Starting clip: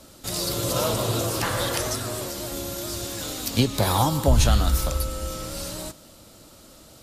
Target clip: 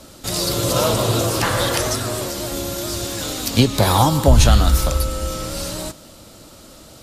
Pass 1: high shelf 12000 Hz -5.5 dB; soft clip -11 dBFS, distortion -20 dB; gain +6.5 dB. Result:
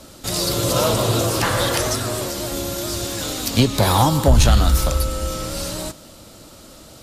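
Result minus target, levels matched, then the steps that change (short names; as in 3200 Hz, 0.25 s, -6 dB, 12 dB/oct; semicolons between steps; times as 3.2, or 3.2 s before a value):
soft clip: distortion +17 dB
change: soft clip -1.5 dBFS, distortion -37 dB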